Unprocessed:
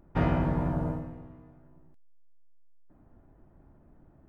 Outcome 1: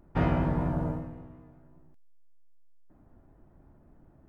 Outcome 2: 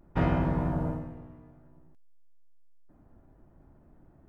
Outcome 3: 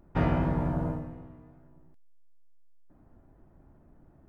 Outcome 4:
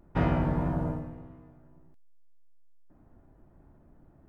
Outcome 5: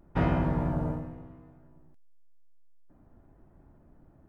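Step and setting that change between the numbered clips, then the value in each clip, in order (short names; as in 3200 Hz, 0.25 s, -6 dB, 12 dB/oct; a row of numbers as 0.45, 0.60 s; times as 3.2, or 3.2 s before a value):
vibrato, rate: 5.2, 0.53, 2.7, 1.7, 0.93 Hz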